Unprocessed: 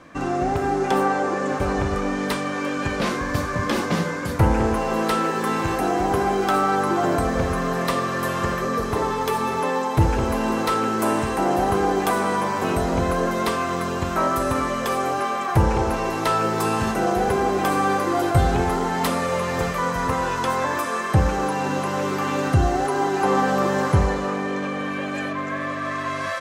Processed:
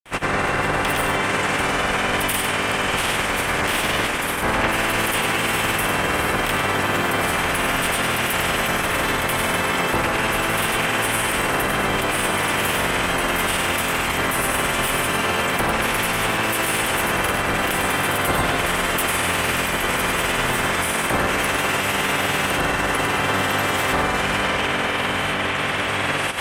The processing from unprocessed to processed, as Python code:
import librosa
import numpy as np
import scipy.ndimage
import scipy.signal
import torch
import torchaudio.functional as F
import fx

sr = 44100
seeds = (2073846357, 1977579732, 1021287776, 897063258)

p1 = fx.spec_clip(x, sr, under_db=28)
p2 = fx.band_shelf(p1, sr, hz=5300.0, db=-13.5, octaves=1.1)
p3 = fx.over_compress(p2, sr, threshold_db=-26.0, ratio=-1.0)
p4 = p2 + F.gain(torch.from_numpy(p3), 1.5).numpy()
p5 = 10.0 ** (-15.0 / 20.0) * np.tanh(p4 / 10.0 ** (-15.0 / 20.0))
p6 = fx.granulator(p5, sr, seeds[0], grain_ms=100.0, per_s=20.0, spray_ms=100.0, spread_st=0)
y = p6 + 10.0 ** (-6.5 / 20.0) * np.pad(p6, (int(101 * sr / 1000.0), 0))[:len(p6)]